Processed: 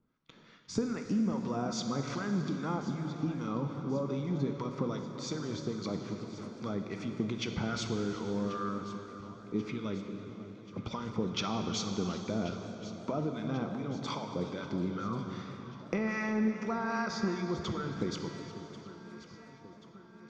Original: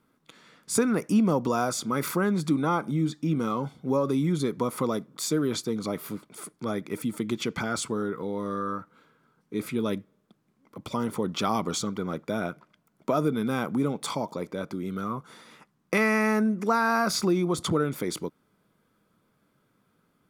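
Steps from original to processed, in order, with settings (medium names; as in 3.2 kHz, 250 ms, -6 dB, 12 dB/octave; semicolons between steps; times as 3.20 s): gate -56 dBFS, range -8 dB; elliptic low-pass 6.1 kHz, stop band 60 dB; bass shelf 150 Hz +10 dB; compression, threshold -28 dBFS, peak gain reduction 12 dB; harmonic tremolo 2.5 Hz, depth 70%, crossover 900 Hz; on a send: echo whose repeats swap between lows and highs 543 ms, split 1.1 kHz, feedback 77%, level -14 dB; on the sum: plate-style reverb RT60 3.3 s, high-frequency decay 0.95×, DRR 5 dB; modulated delay 363 ms, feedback 47%, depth 188 cents, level -18 dB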